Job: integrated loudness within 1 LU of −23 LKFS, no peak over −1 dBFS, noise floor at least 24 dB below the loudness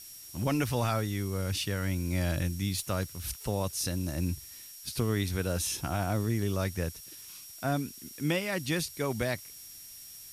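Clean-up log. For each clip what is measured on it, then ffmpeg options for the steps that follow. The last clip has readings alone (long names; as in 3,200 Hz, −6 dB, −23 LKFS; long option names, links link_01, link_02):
interfering tone 5,600 Hz; level of the tone −51 dBFS; background noise floor −48 dBFS; target noise floor −56 dBFS; integrated loudness −32.0 LKFS; sample peak −17.0 dBFS; target loudness −23.0 LKFS
→ -af "bandreject=frequency=5600:width=30"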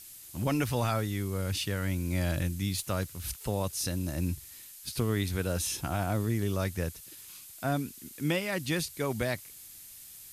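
interfering tone none found; background noise floor −49 dBFS; target noise floor −56 dBFS
→ -af "afftdn=noise_reduction=7:noise_floor=-49"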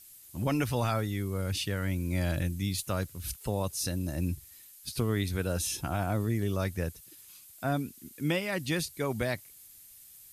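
background noise floor −53 dBFS; target noise floor −56 dBFS
→ -af "afftdn=noise_reduction=6:noise_floor=-53"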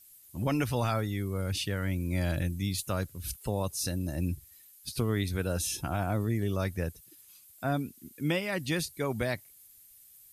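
background noise floor −57 dBFS; integrated loudness −32.0 LKFS; sample peak −17.5 dBFS; target loudness −23.0 LKFS
→ -af "volume=9dB"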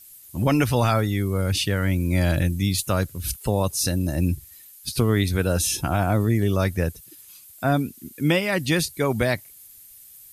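integrated loudness −23.0 LKFS; sample peak −8.5 dBFS; background noise floor −48 dBFS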